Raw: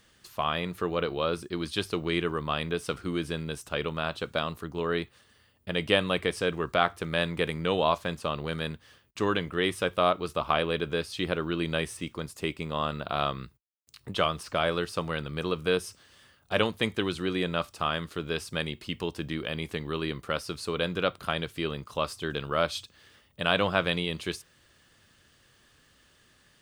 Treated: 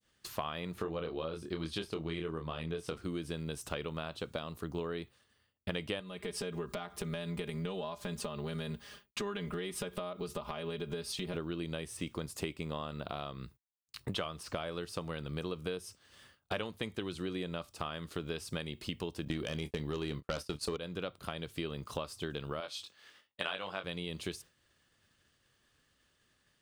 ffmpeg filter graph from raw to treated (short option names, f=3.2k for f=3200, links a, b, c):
-filter_complex "[0:a]asettb=1/sr,asplit=3[a][b][c];[a]atrim=end=0.744[d];[b]atrim=start=0.74:end=2.98,asetpts=PTS-STARTPTS,afade=t=in:d=0.004:c=qsin,afade=t=out:st=2.236:d=0.004:c=qsin,highshelf=f=6.5k:g=-8,asplit=2[e][f];[f]adelay=25,volume=-4.5dB[g];[e][g]amix=inputs=2:normalize=0,atrim=end_sample=98784[h];[c]atrim=start=2.976[i];[d][h]acrossfade=d=0.004:c1=hsin:c2=qsin[j];[j][i]acrossfade=d=0.004:c1=qsin:c2=hsin,asettb=1/sr,asplit=3[k][l][m];[k]atrim=end=6.004[n];[l]atrim=start=6:end=11.34,asetpts=PTS-STARTPTS,afade=t=in:d=0.004:c=qsin,afade=t=out:st=5.336:d=0.004:c=qsin,acompressor=threshold=-39dB:ratio=3:attack=3.2:release=140:knee=1:detection=peak,aecho=1:1:4.9:0.93,atrim=end_sample=235494[o];[m]atrim=start=11.336[p];[n][o]acrossfade=d=0.004:c1=hsin:c2=qsin[q];[q][p]acrossfade=d=0.004:c1=qsin:c2=hsin,asettb=1/sr,asplit=3[r][s][t];[r]atrim=end=19.254[u];[s]atrim=start=19.25:end=20.77,asetpts=PTS-STARTPTS,afade=t=in:d=0.004:c=qsin,afade=t=out:st=1.516:d=0.004:c=qsin,agate=range=-38dB:threshold=-40dB:ratio=16:release=100:detection=peak,aeval=exprs='0.224*sin(PI/2*2.24*val(0)/0.224)':c=same,asplit=2[v][w];[w]adelay=27,volume=-13dB[x];[v][x]amix=inputs=2:normalize=0,atrim=end_sample=67032[y];[t]atrim=start=20.766[z];[u][y]acrossfade=d=0.004:c1=hsin:c2=qsin[aa];[aa][z]acrossfade=d=0.004:c1=qsin:c2=hsin,asettb=1/sr,asplit=3[ab][ac][ad];[ab]atrim=end=22.604[ae];[ac]atrim=start=22.6:end=23.84,asetpts=PTS-STARTPTS,afade=t=in:d=0.004:c=qsin,afade=t=out:st=1.236:d=0.004:c=qsin,highpass=f=730:p=1,highshelf=f=9.1k:g=-8.5,asplit=2[af][ag];[ag]adelay=21,volume=-4dB[ah];[af][ah]amix=inputs=2:normalize=0,atrim=end_sample=54684[ai];[ad]atrim=start=23.836[aj];[ae][ai]acrossfade=d=0.004:c1=hsin:c2=qsin[ak];[ak][aj]acrossfade=d=0.004:c1=qsin:c2=hsin,acompressor=threshold=-38dB:ratio=10,agate=range=-33dB:threshold=-51dB:ratio=3:detection=peak,adynamicequalizer=threshold=0.00158:dfrequency=1600:dqfactor=0.72:tfrequency=1600:tqfactor=0.72:attack=5:release=100:ratio=0.375:range=3:mode=cutabove:tftype=bell,volume=4.5dB"